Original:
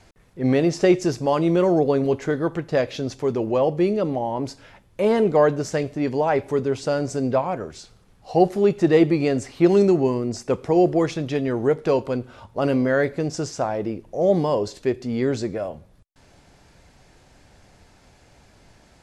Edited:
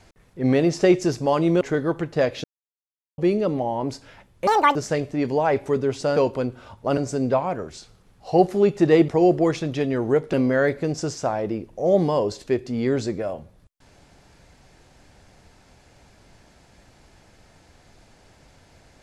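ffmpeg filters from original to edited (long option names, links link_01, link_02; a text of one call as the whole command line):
ffmpeg -i in.wav -filter_complex "[0:a]asplit=10[link_01][link_02][link_03][link_04][link_05][link_06][link_07][link_08][link_09][link_10];[link_01]atrim=end=1.612[link_11];[link_02]atrim=start=2.168:end=3,asetpts=PTS-STARTPTS,afade=type=out:start_time=0.828:duration=0.004:curve=hsin[link_12];[link_03]atrim=start=3:end=3.74,asetpts=PTS-STARTPTS,volume=0[link_13];[link_04]atrim=start=3.74:end=5.034,asetpts=PTS-STARTPTS,afade=type=in:duration=0.004:curve=hsin[link_14];[link_05]atrim=start=5.03:end=5.58,asetpts=PTS-STARTPTS,asetrate=85554,aresample=44100[link_15];[link_06]atrim=start=5.576:end=6.992[link_16];[link_07]atrim=start=11.878:end=12.692[link_17];[link_08]atrim=start=6.988:end=9.102[link_18];[link_09]atrim=start=10.628:end=11.882[link_19];[link_10]atrim=start=12.688[link_20];[link_12][link_13][link_14]concat=n=3:v=0:a=1[link_21];[link_11][link_21]acrossfade=duration=0.004:curve1=hsin:curve2=hsin[link_22];[link_22][link_15]acrossfade=duration=0.004:curve1=hsin:curve2=hsin[link_23];[link_23][link_16]acrossfade=duration=0.004:curve1=hsin:curve2=hsin[link_24];[link_24][link_17]acrossfade=duration=0.004:curve1=hsin:curve2=hsin[link_25];[link_25][link_18]acrossfade=duration=0.004:curve1=hsin:curve2=hsin[link_26];[link_26][link_19]acrossfade=duration=0.004:curve1=hsin:curve2=hsin[link_27];[link_27][link_20]acrossfade=duration=0.004:curve1=hsin:curve2=hsin" out.wav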